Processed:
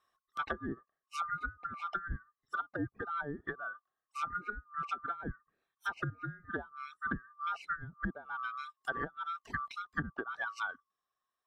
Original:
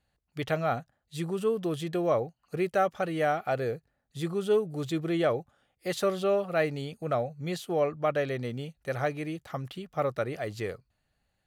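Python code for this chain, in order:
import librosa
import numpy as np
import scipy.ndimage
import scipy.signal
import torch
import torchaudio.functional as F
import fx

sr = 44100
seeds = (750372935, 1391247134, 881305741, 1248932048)

y = fx.band_swap(x, sr, width_hz=1000)
y = fx.dereverb_blind(y, sr, rt60_s=1.7)
y = fx.env_lowpass_down(y, sr, base_hz=380.0, full_db=-25.0)
y = y * 10.0 ** (-1.5 / 20.0)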